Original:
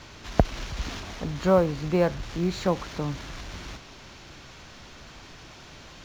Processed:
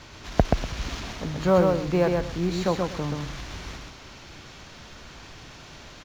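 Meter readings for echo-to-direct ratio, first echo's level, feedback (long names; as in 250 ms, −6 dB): −3.5 dB, −3.5 dB, repeats not evenly spaced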